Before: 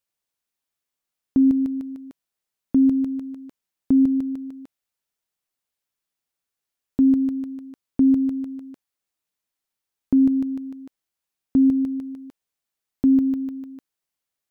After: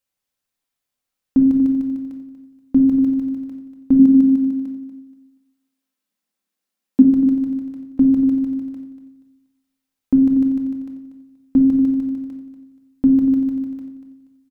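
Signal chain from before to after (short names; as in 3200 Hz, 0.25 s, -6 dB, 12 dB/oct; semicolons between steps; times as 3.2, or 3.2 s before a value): 3.99–7.02 resonant low shelf 150 Hz -11 dB, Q 3; feedback echo 0.239 s, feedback 27%, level -11 dB; reverb RT60 0.70 s, pre-delay 4 ms, DRR 0.5 dB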